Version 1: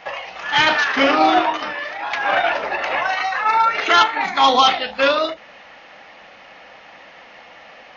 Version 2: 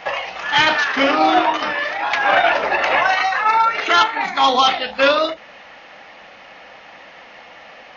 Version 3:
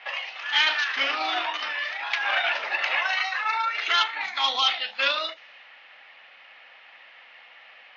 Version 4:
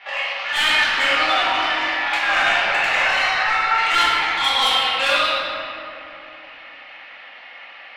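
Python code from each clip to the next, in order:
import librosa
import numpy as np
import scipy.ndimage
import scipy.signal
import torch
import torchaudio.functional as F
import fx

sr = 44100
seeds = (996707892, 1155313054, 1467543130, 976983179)

y1 = fx.rider(x, sr, range_db=4, speed_s=0.5)
y1 = y1 * 10.0 ** (1.5 / 20.0)
y2 = fx.bandpass_q(y1, sr, hz=3200.0, q=0.97)
y2 = fx.env_lowpass(y2, sr, base_hz=2800.0, full_db=-21.5)
y2 = y2 * 10.0 ** (-3.0 / 20.0)
y3 = 10.0 ** (-20.0 / 20.0) * np.tanh(y2 / 10.0 ** (-20.0 / 20.0))
y3 = fx.room_shoebox(y3, sr, seeds[0], volume_m3=120.0, walls='hard', distance_m=1.2)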